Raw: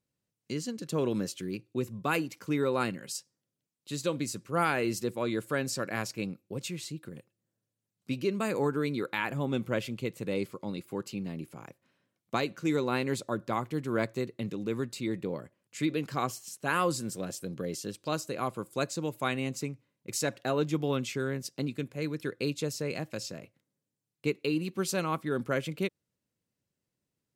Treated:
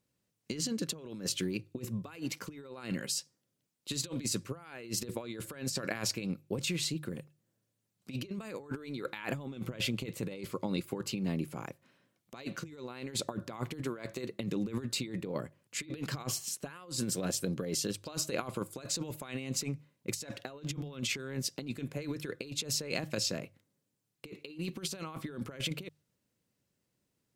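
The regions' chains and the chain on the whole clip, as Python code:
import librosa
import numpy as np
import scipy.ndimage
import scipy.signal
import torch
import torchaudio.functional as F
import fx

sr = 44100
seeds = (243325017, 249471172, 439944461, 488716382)

y = fx.chain(x, sr, fx.bass_treble(bass_db=-7, treble_db=0),
    fx.hum_notches(base_hz=50, count=4), at=(13.82, 14.4))
y = fx.dynamic_eq(y, sr, hz=3600.0, q=0.85, threshold_db=-47.0, ratio=4.0, max_db=4)
y = fx.over_compress(y, sr, threshold_db=-36.0, ratio=-0.5)
y = fx.hum_notches(y, sr, base_hz=50, count=3)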